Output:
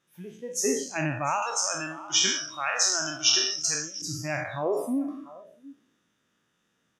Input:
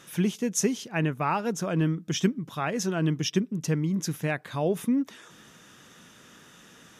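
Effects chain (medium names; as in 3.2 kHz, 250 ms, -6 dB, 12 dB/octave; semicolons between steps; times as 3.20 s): spectral sustain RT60 1.21 s; treble shelf 6.5 kHz -4.5 dB; delay 694 ms -15 dB; spectral noise reduction 21 dB; 1.42–4.02 s: frequency weighting ITU-R 468; trim -2.5 dB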